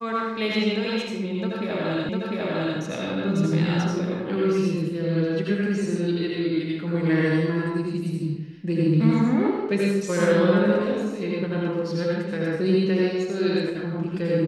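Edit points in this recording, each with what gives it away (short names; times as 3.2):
2.09 repeat of the last 0.7 s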